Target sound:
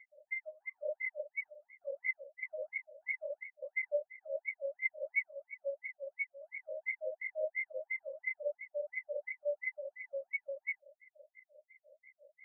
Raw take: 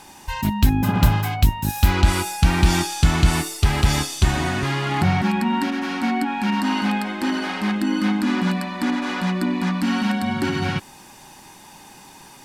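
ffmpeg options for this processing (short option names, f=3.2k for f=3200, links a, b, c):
-af "afftfilt=real='re*(1-between(b*sr/4096,630,2000))':imag='im*(1-between(b*sr/4096,630,2000))':win_size=4096:overlap=0.75,afftfilt=real='re*between(b*sr/1024,700*pow(1600/700,0.5+0.5*sin(2*PI*2.9*pts/sr))/1.41,700*pow(1600/700,0.5+0.5*sin(2*PI*2.9*pts/sr))*1.41)':imag='im*between(b*sr/1024,700*pow(1600/700,0.5+0.5*sin(2*PI*2.9*pts/sr))/1.41,700*pow(1600/700,0.5+0.5*sin(2*PI*2.9*pts/sr))*1.41)':win_size=1024:overlap=0.75,volume=6dB"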